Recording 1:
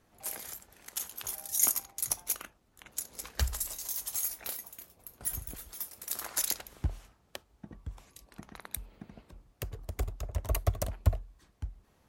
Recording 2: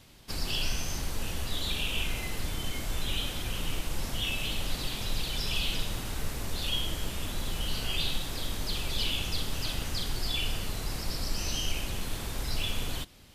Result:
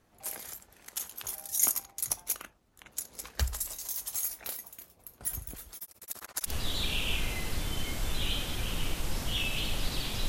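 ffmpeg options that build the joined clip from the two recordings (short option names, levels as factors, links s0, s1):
-filter_complex "[0:a]asettb=1/sr,asplit=3[s0][s1][s2];[s0]atrim=end=5.774[s3];[s1]atrim=start=5.77:end=6.53,asetpts=PTS-STARTPTS,afade=t=in:d=0.004:c=qsin,afade=t=out:st=0.756:d=0.004:c=qsin,tremolo=f=15:d=1[s4];[s2]atrim=start=6.526[s5];[s3][s4]acrossfade=d=0.004:c1=hsin:c2=qsin[s6];[s6][s5]acrossfade=d=0.004:c1=qsin:c2=hsin,apad=whole_dur=10.28,atrim=end=10.28,atrim=end=6.53,asetpts=PTS-STARTPTS[s7];[1:a]atrim=start=1.32:end=5.15,asetpts=PTS-STARTPTS[s8];[s7][s8]acrossfade=d=0.08:c1=tri:c2=tri"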